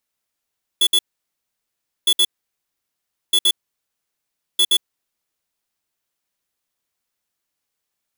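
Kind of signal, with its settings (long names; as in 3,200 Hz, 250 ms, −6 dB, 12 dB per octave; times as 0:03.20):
beeps in groups square 3,420 Hz, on 0.06 s, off 0.06 s, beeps 2, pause 1.08 s, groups 4, −14.5 dBFS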